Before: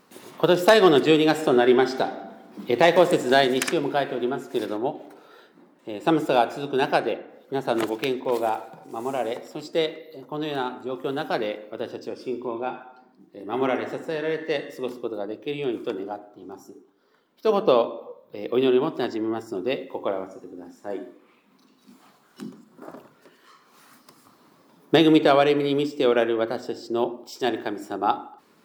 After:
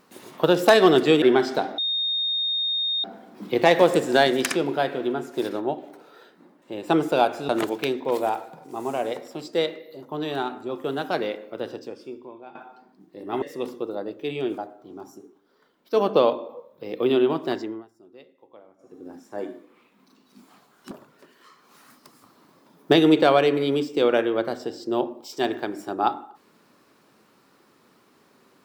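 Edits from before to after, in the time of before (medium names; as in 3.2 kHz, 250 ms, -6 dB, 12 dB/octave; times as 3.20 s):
1.22–1.65 s: delete
2.21 s: add tone 3.69 kHz -22 dBFS 1.26 s
6.66–7.69 s: delete
11.92–12.75 s: fade out quadratic, to -15 dB
13.62–14.65 s: delete
15.81–16.10 s: delete
19.08–20.59 s: dip -22.5 dB, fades 0.29 s
22.43–22.94 s: delete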